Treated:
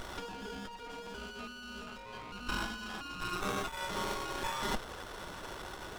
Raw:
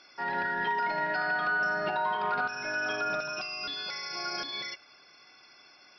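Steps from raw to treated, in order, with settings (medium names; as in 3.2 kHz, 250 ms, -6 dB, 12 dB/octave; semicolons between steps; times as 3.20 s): 3.33–4.36 s: comb 0.9 ms, depth 61%; compressor with a negative ratio -42 dBFS, ratio -1; steep high-pass 1.1 kHz 36 dB/octave; sliding maximum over 17 samples; trim +7.5 dB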